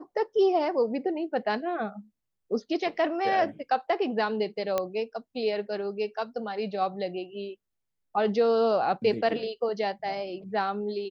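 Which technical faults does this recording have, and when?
4.78 s: pop -13 dBFS

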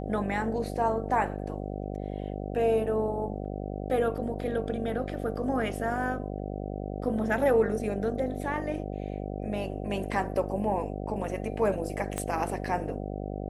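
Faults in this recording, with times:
buzz 50 Hz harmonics 15 -35 dBFS
12.18 s: pop -17 dBFS

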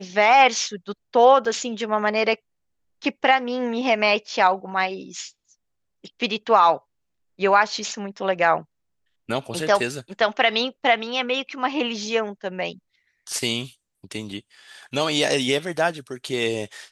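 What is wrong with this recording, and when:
1.45 s: dropout 2.5 ms

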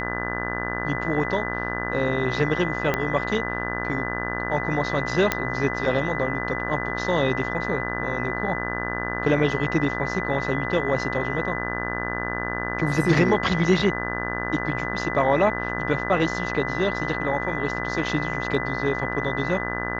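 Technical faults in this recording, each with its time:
buzz 60 Hz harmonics 31 -30 dBFS
whine 2 kHz -30 dBFS
2.94 s: pop -9 dBFS
5.32 s: pop -5 dBFS

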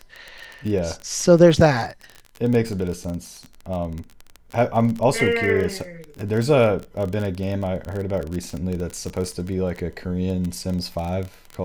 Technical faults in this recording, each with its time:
crackle 25 per s -25 dBFS

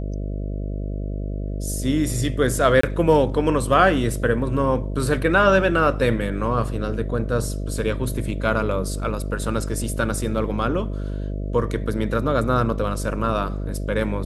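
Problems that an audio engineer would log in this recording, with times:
buzz 50 Hz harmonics 13 -27 dBFS
2.81–2.83 s: dropout 24 ms

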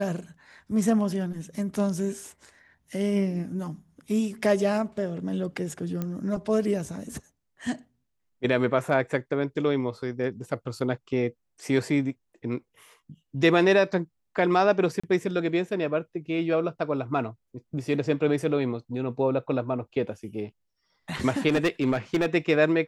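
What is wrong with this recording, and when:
6.02 s: pop -18 dBFS
15.00–15.04 s: dropout 35 ms
21.48–22.27 s: clipped -18 dBFS

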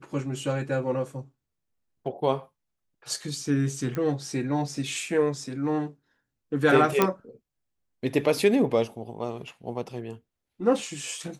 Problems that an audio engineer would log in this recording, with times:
3.95 s: pop -19 dBFS
7.02 s: pop -6 dBFS

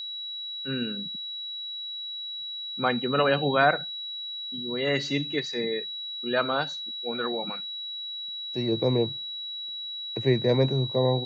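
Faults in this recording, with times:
whine 3.9 kHz -33 dBFS

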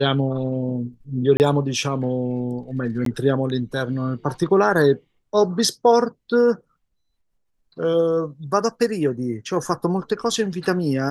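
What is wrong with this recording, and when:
1.37–1.40 s: dropout 29 ms
3.05–3.06 s: dropout 13 ms

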